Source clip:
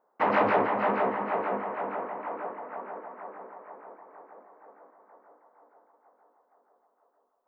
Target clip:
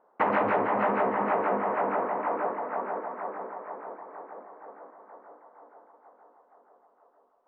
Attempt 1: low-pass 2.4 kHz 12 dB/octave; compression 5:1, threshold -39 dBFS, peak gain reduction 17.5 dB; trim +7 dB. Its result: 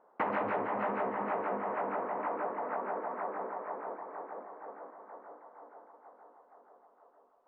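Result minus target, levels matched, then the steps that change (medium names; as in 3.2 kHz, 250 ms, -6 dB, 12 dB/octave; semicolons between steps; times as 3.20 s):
compression: peak gain reduction +7.5 dB
change: compression 5:1, threshold -29.5 dBFS, peak gain reduction 10 dB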